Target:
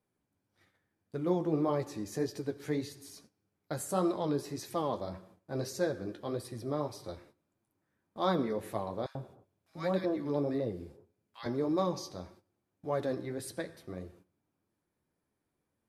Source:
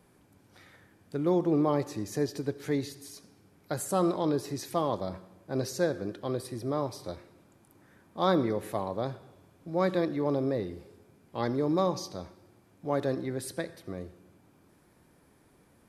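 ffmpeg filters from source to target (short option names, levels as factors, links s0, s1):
-filter_complex "[0:a]agate=range=0.141:threshold=0.00224:ratio=16:detection=peak,flanger=delay=8.7:depth=5.1:regen=-36:speed=1.7:shape=sinusoidal,asettb=1/sr,asplit=3[s0][s1][s2];[s0]atrim=end=9.064[s3];[s1]atrim=start=9.06:end=11.46,asetpts=PTS-STARTPTS,afade=t=in:d=0.004:c=qsin,afade=t=out:st=2.396:d=0.004:c=qsin,acrossover=split=1200[s4][s5];[s4]adelay=90[s6];[s6][s5]amix=inputs=2:normalize=0,atrim=end_sample=105840[s7];[s2]atrim=start=11.456[s8];[s3][s7]acrossfade=d=0.004:c1=hsin:c2=qsin[s9];[s9][s8]acrossfade=d=0.004:c1=qsin:c2=hsin"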